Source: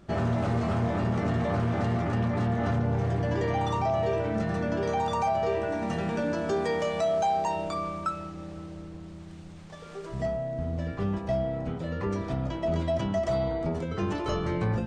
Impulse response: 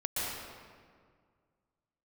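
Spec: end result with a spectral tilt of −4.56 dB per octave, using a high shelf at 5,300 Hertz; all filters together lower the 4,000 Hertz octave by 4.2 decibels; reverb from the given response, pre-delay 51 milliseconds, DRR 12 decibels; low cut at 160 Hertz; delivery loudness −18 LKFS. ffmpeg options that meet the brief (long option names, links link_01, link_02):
-filter_complex "[0:a]highpass=160,equalizer=frequency=4000:width_type=o:gain=-9,highshelf=frequency=5300:gain=7.5,asplit=2[link_01][link_02];[1:a]atrim=start_sample=2205,adelay=51[link_03];[link_02][link_03]afir=irnorm=-1:irlink=0,volume=-18.5dB[link_04];[link_01][link_04]amix=inputs=2:normalize=0,volume=11.5dB"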